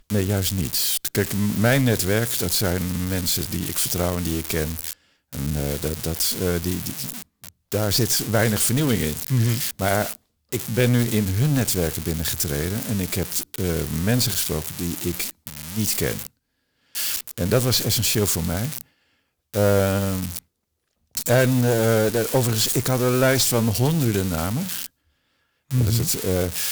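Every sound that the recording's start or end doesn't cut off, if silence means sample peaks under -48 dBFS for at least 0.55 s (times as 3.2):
16.95–18.81
19.54–20.39
21.15–24.87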